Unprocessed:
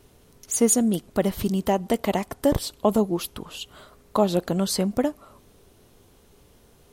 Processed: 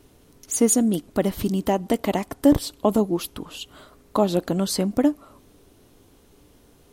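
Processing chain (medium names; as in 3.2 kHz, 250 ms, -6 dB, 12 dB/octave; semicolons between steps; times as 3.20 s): peaking EQ 290 Hz +9 dB 0.26 oct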